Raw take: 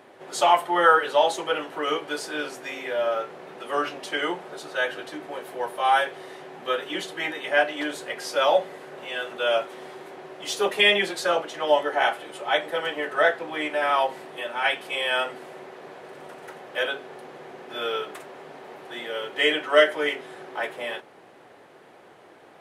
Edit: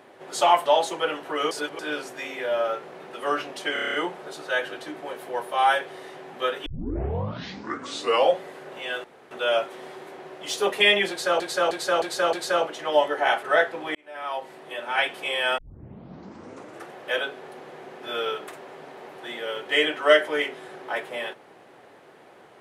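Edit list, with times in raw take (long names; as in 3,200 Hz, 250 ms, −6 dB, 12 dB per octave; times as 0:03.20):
0:00.66–0:01.13: remove
0:01.98–0:02.26: reverse
0:04.20: stutter 0.03 s, 8 plays
0:06.92: tape start 1.73 s
0:09.30: splice in room tone 0.27 s
0:11.08–0:11.39: repeat, 5 plays
0:12.18–0:13.10: remove
0:13.62–0:14.62: fade in
0:15.25: tape start 1.37 s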